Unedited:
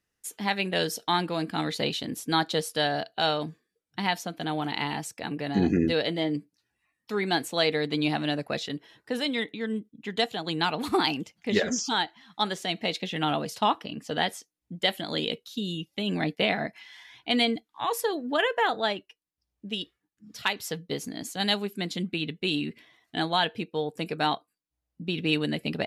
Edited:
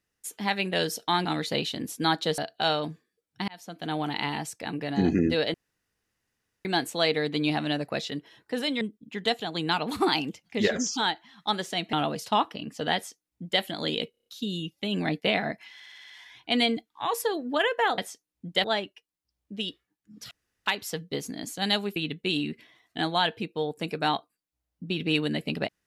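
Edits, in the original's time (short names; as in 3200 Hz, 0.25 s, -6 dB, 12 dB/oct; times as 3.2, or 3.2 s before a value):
1.25–1.53 cut
2.66–2.96 cut
4.06–4.51 fade in
6.12–7.23 room tone
9.39–9.73 cut
12.85–13.23 cut
14.25–14.91 copy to 18.77
15.41 stutter 0.03 s, 6 plays
16.89 stutter 0.06 s, 7 plays
20.44 insert room tone 0.35 s
21.74–22.14 cut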